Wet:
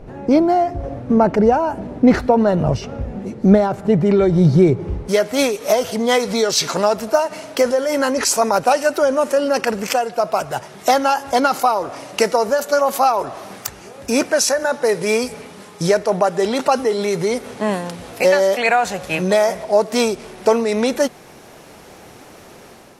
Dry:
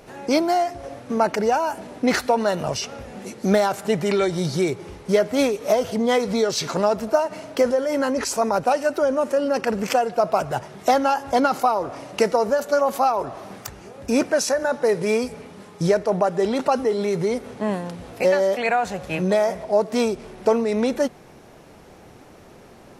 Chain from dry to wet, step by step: tilt EQ -4 dB/octave, from 5.07 s +1.5 dB/octave; level rider gain up to 6.5 dB

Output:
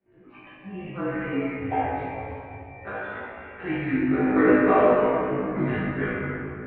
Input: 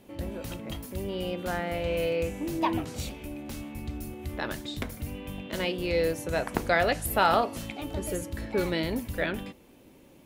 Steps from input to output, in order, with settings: on a send: flutter echo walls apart 4.9 m, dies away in 0.67 s; on the sum: spectral noise reduction 17 dB; granular stretch 0.65×, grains 21 ms; simulated room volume 130 m³, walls hard, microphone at 1.2 m; mistuned SSB -210 Hz 370–2500 Hz; trim -5.5 dB

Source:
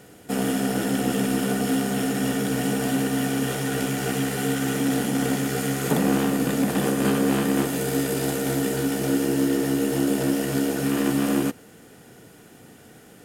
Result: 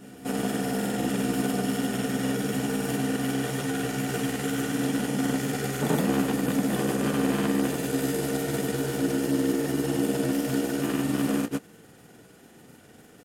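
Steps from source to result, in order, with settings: granulator, pitch spread up and down by 0 st; reverse echo 1168 ms -20 dB; trim -2 dB

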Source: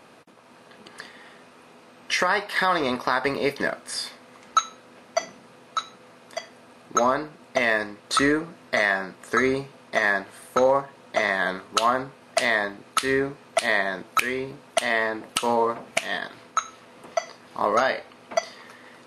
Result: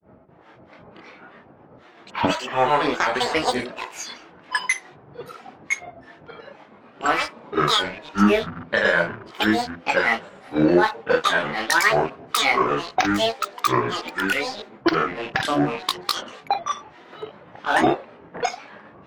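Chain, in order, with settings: rattle on loud lows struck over -45 dBFS, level -24 dBFS; level-controlled noise filter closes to 2 kHz, open at -17 dBFS; chorus voices 6, 0.15 Hz, delay 28 ms, depth 3.3 ms; on a send: feedback echo behind a band-pass 98 ms, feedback 40%, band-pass 560 Hz, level -13.5 dB; on the sum: granulator 240 ms, grains 8 per s, pitch spread up and down by 12 st; trim +7 dB

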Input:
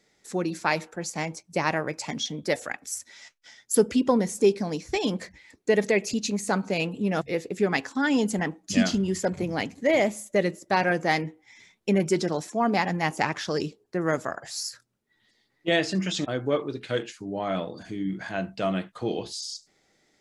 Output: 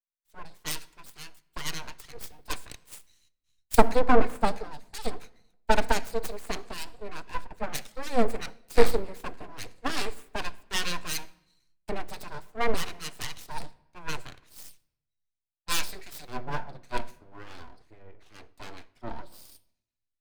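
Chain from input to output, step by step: self-modulated delay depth 0.43 ms; rippled EQ curve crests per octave 0.96, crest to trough 18 dB; full-wave rectifier; simulated room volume 2800 m³, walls mixed, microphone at 0.4 m; three bands expanded up and down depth 100%; trim -8.5 dB

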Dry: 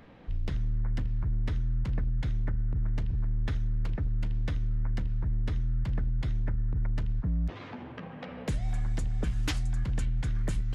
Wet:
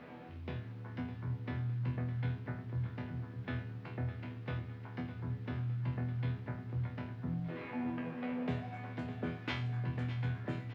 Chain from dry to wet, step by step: Bessel high-pass 160 Hz, order 6; peaking EQ 2.4 kHz +3 dB 0.34 oct; reverse; upward compressor, threshold -41 dBFS; reverse; vibrato 7.5 Hz 5.2 cents; chord resonator E2 fifth, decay 0.44 s; word length cut 12-bit, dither triangular; distance through air 360 m; doubling 15 ms -13 dB; on a send: feedback delay 608 ms, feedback 47%, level -12 dB; on the sum: trim +13.5 dB

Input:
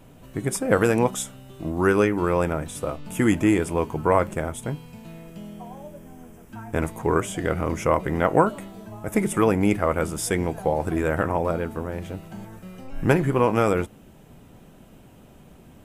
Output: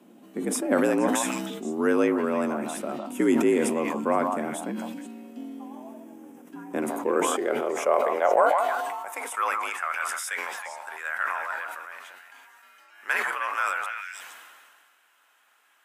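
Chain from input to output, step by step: high-pass sweep 180 Hz -> 1.4 kHz, 6.63–9.81 s; repeats whose band climbs or falls 157 ms, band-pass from 840 Hz, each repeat 1.4 oct, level -4 dB; frequency shift +64 Hz; decay stretcher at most 29 dB/s; trim -6.5 dB

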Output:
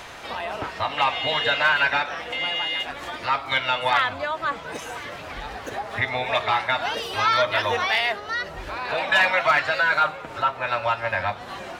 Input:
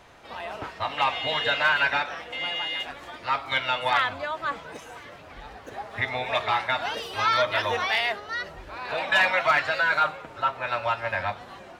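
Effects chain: in parallel at +1.5 dB: compression, threshold -38 dBFS, peak gain reduction 19.5 dB; on the sum: tape noise reduction on one side only encoder only; trim +1 dB

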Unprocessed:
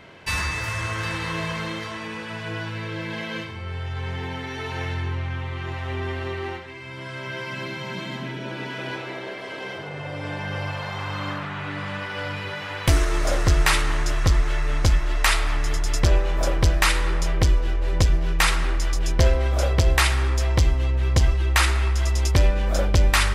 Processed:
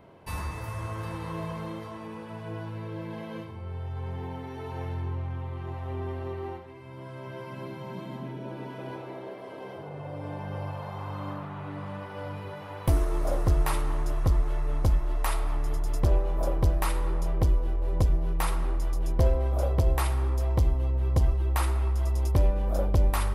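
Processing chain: high-order bell 3.4 kHz -13 dB 2.8 oct; trim -4.5 dB

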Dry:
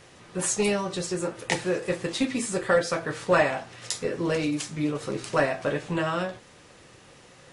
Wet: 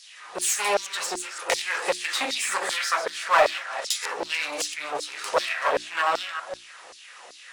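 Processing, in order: chunks repeated in reverse 173 ms, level -10 dB; on a send at -15 dB: reverberation RT60 1.3 s, pre-delay 3 ms; on the sum: one-sided clip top -33.5 dBFS; LFO high-pass saw down 2.6 Hz 530–5000 Hz; hum notches 60/120/180/240/300/360 Hz; in parallel at -4 dB: saturation -21 dBFS, distortion -11 dB; 1.46–2.82 s: on the sum: three bands compressed up and down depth 70%; trim +1 dB

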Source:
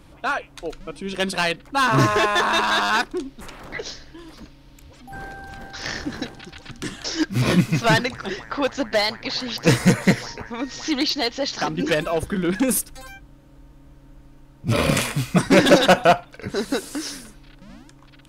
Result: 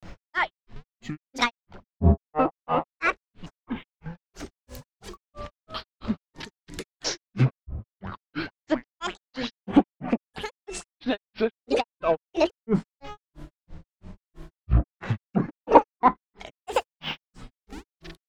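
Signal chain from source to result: median filter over 3 samples; low-pass that closes with the level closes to 640 Hz, closed at -14 dBFS; hum notches 50/100/150/200/250 Hz; upward compressor, threshold -33 dBFS; granulator 178 ms, grains 3 per s, pitch spread up and down by 12 st; trim +3 dB

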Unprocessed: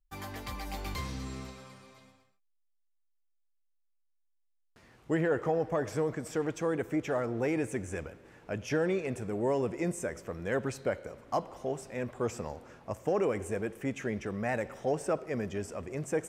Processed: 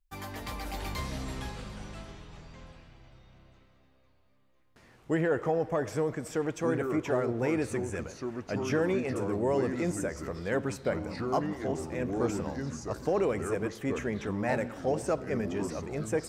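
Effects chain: ever faster or slower copies 213 ms, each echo -4 st, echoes 3, each echo -6 dB; trim +1 dB

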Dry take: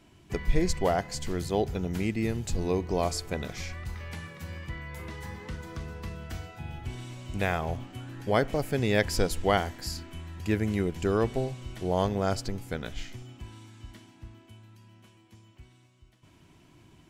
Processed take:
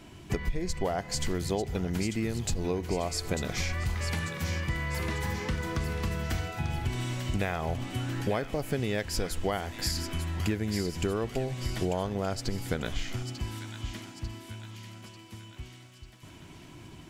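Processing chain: compression 16:1, threshold -34 dBFS, peak gain reduction 18 dB; on a send: feedback echo behind a high-pass 894 ms, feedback 52%, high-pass 1.7 kHz, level -7 dB; on the sum: trim +8.5 dB

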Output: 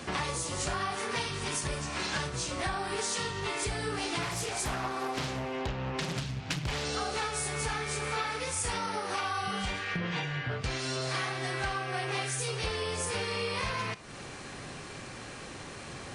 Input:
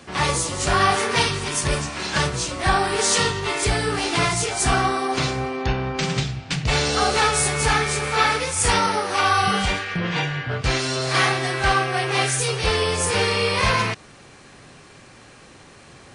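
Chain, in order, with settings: compression 8:1, threshold -34 dBFS, peak gain reduction 19.5 dB; reverberation, pre-delay 30 ms, DRR 15.5 dB; 4.22–6.84 s: loudspeaker Doppler distortion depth 0.76 ms; trim +3 dB

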